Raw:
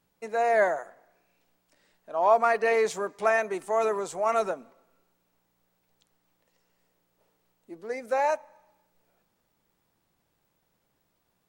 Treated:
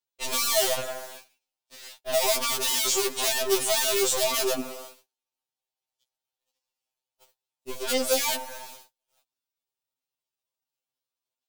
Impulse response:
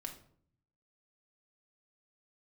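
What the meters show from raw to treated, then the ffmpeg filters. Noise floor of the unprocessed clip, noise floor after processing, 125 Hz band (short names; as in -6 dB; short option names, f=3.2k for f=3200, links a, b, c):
-75 dBFS, under -85 dBFS, n/a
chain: -filter_complex "[0:a]acrossover=split=480[a][b];[b]acompressor=threshold=-37dB:ratio=16[c];[a][c]amix=inputs=2:normalize=0,asplit=2[d][e];[e]highpass=f=720:p=1,volume=32dB,asoftclip=type=tanh:threshold=-20dB[f];[d][f]amix=inputs=2:normalize=0,lowpass=f=1.8k:p=1,volume=-6dB,asplit=2[g][h];[h]acrusher=bits=5:dc=4:mix=0:aa=0.000001,volume=-3.5dB[i];[g][i]amix=inputs=2:normalize=0,agate=range=-41dB:threshold=-42dB:ratio=16:detection=peak,aexciter=amount=6.1:drive=4.4:freq=2.7k,afftfilt=real='re*2.45*eq(mod(b,6),0)':imag='im*2.45*eq(mod(b,6),0)':win_size=2048:overlap=0.75,volume=-2.5dB"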